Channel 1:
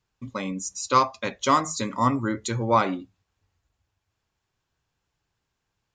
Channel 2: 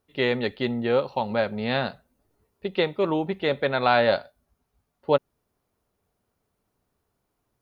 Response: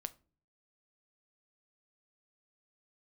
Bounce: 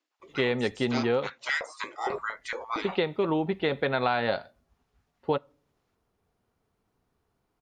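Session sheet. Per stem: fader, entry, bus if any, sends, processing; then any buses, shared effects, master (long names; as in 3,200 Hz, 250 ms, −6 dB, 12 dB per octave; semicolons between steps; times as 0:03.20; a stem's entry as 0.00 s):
−0.5 dB, 0.00 s, no send, gate on every frequency bin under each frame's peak −15 dB weak; high-pass on a step sequencer 8.7 Hz 300–1,800 Hz
−0.5 dB, 0.20 s, muted 0:01.30–0:02.10, send −10 dB, notch filter 580 Hz, Q 12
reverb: on, RT60 0.40 s, pre-delay 7 ms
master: high-shelf EQ 8,000 Hz −12 dB; downward compressor, threshold −22 dBFS, peak gain reduction 8 dB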